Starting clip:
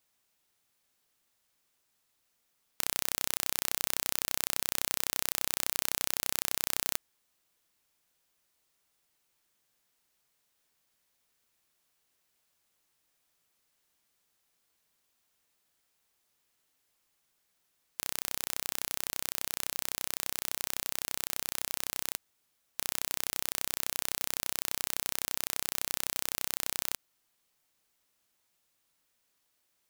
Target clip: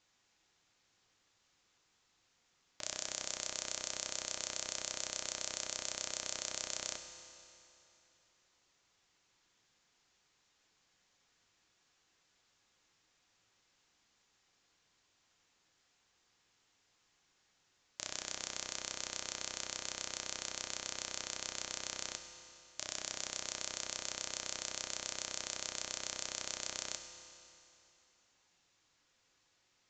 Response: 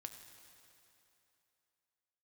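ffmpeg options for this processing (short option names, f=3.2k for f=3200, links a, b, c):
-filter_complex "[0:a]bandreject=f=610:w=12,aresample=16000,asoftclip=type=hard:threshold=-25.5dB,aresample=44100[a];[1:a]atrim=start_sample=2205[b];[a][b]afir=irnorm=-1:irlink=0,volume=10dB"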